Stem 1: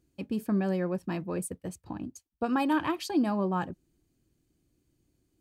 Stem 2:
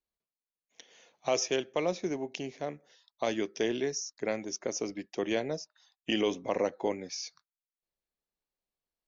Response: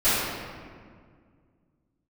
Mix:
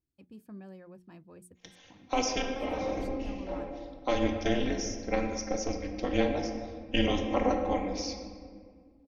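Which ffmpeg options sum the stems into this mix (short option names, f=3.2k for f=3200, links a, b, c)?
-filter_complex "[0:a]volume=-19dB,asplit=2[a][b];[1:a]lowpass=f=6k:w=0.5412,lowpass=f=6k:w=1.3066,aecho=1:1:3.8:0.9,tremolo=f=240:d=0.947,adelay=850,volume=1.5dB,asplit=2[c][d];[d]volume=-20.5dB[e];[b]apad=whole_len=437774[f];[c][f]sidechaincompress=threshold=-60dB:ratio=8:attack=50:release=113[g];[2:a]atrim=start_sample=2205[h];[e][h]afir=irnorm=-1:irlink=0[i];[a][g][i]amix=inputs=3:normalize=0,lowshelf=f=96:g=6.5,bandreject=f=60:t=h:w=6,bandreject=f=120:t=h:w=6,bandreject=f=180:t=h:w=6,bandreject=f=240:t=h:w=6,bandreject=f=300:t=h:w=6,bandreject=f=360:t=h:w=6"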